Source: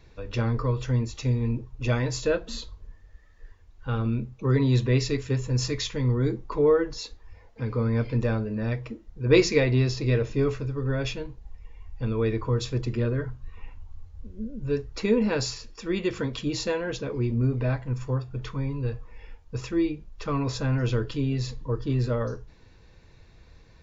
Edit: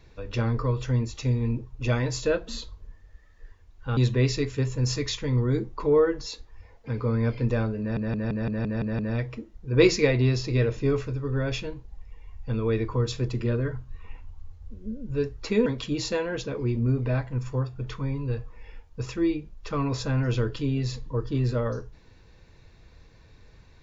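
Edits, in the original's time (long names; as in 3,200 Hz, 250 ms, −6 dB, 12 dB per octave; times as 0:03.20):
0:03.97–0:04.69: remove
0:08.52: stutter 0.17 s, 8 plays
0:15.19–0:16.21: remove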